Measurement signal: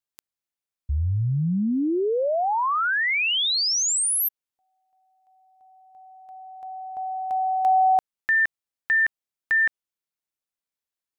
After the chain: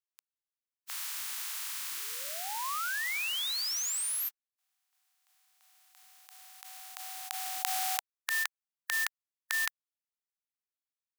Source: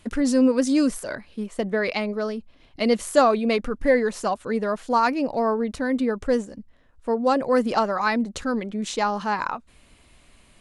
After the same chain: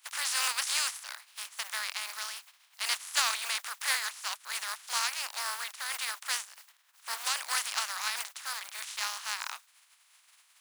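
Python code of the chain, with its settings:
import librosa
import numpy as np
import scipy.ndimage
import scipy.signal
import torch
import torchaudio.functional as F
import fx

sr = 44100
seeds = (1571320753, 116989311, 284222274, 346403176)

y = fx.spec_flatten(x, sr, power=0.3)
y = scipy.signal.sosfilt(scipy.signal.butter(4, 940.0, 'highpass', fs=sr, output='sos'), y)
y = F.gain(torch.from_numpy(y), -9.5).numpy()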